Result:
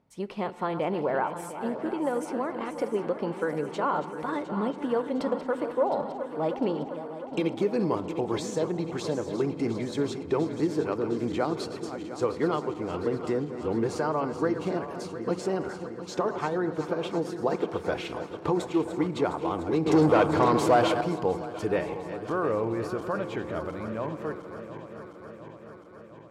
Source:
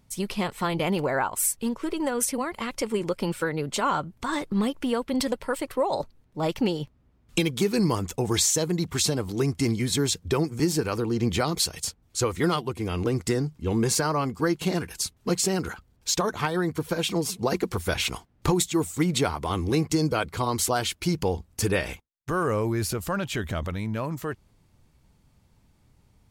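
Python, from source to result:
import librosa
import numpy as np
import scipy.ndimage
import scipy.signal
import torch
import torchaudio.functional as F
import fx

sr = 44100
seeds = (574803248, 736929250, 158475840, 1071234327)

p1 = fx.reverse_delay_fb(x, sr, ms=354, feedback_pct=80, wet_db=-11.0)
p2 = fx.leveller(p1, sr, passes=3, at=(19.86, 21.01))
p3 = fx.bandpass_q(p2, sr, hz=560.0, q=0.72)
p4 = p3 + fx.echo_feedback(p3, sr, ms=218, feedback_pct=54, wet_db=-22.0, dry=0)
y = fx.rev_fdn(p4, sr, rt60_s=1.6, lf_ratio=1.0, hf_ratio=0.35, size_ms=20.0, drr_db=15.5)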